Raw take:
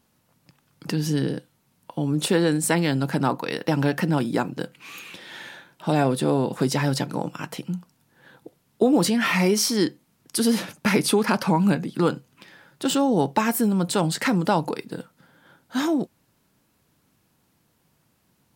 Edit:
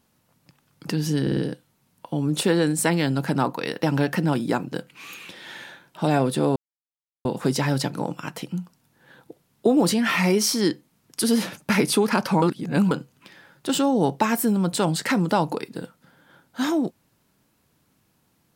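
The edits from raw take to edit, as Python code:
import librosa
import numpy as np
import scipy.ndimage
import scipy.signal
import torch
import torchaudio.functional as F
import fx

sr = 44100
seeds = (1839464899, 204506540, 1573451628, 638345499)

y = fx.edit(x, sr, fx.stutter(start_s=1.22, slice_s=0.05, count=4),
    fx.insert_silence(at_s=6.41, length_s=0.69),
    fx.reverse_span(start_s=11.58, length_s=0.49), tone=tone)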